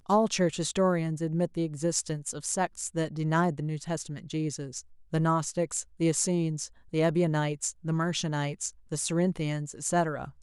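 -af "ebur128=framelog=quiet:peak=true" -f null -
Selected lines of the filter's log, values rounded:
Integrated loudness:
  I:         -29.3 LUFS
  Threshold: -39.4 LUFS
Loudness range:
  LRA:         2.1 LU
  Threshold: -49.7 LUFS
  LRA low:   -30.7 LUFS
  LRA high:  -28.6 LUFS
True peak:
  Peak:      -12.5 dBFS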